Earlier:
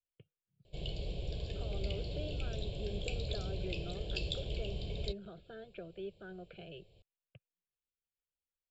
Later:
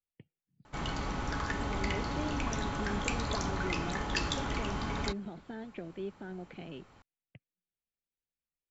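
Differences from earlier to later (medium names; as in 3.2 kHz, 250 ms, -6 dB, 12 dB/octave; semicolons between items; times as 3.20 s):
background: remove Butterworth band-stop 1.3 kHz, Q 0.55; master: remove static phaser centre 1.3 kHz, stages 8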